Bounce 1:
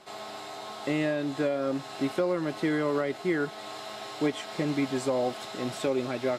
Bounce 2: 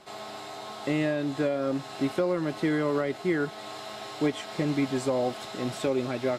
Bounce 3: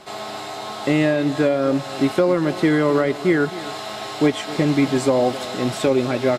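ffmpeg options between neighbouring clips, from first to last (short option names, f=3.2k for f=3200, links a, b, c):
-af "lowshelf=f=160:g=5.5"
-filter_complex "[0:a]asplit=2[a][b];[b]adelay=262.4,volume=-16dB,highshelf=f=4k:g=-5.9[c];[a][c]amix=inputs=2:normalize=0,volume=9dB"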